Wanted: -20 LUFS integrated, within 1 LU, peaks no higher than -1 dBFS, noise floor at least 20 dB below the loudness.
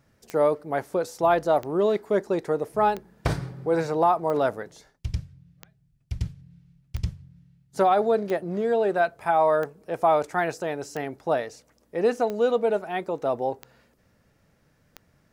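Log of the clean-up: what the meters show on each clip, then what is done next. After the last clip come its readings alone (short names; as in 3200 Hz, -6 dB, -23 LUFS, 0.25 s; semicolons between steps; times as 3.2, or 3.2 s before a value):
clicks 12; loudness -25.5 LUFS; peak -8.5 dBFS; loudness target -20.0 LUFS
-> de-click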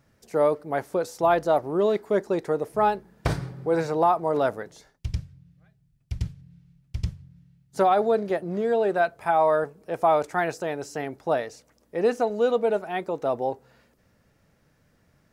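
clicks 0; loudness -25.5 LUFS; peak -8.5 dBFS; loudness target -20.0 LUFS
-> gain +5.5 dB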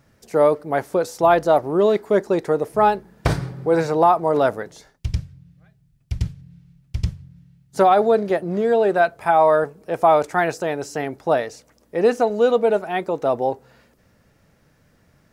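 loudness -20.0 LUFS; peak -3.0 dBFS; noise floor -60 dBFS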